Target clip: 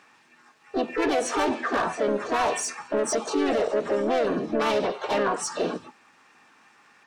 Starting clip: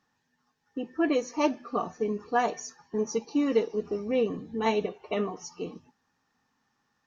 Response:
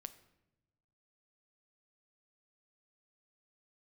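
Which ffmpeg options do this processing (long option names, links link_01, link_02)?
-filter_complex "[0:a]asplit=2[link_01][link_02];[link_02]highpass=frequency=720:poles=1,volume=25dB,asoftclip=type=tanh:threshold=-12.5dB[link_03];[link_01][link_03]amix=inputs=2:normalize=0,lowpass=frequency=2400:poles=1,volume=-6dB,alimiter=limit=-21.5dB:level=0:latency=1:release=95,asplit=3[link_04][link_05][link_06];[link_05]asetrate=58866,aresample=44100,atempo=0.749154,volume=-3dB[link_07];[link_06]asetrate=66075,aresample=44100,atempo=0.66742,volume=-5dB[link_08];[link_04][link_07][link_08]amix=inputs=3:normalize=0"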